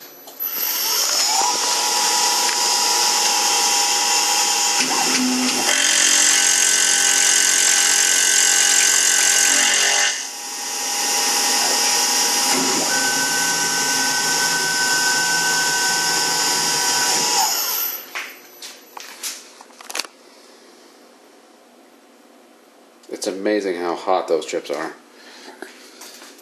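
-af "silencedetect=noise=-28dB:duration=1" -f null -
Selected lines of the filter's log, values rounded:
silence_start: 20.05
silence_end: 23.10 | silence_duration: 3.04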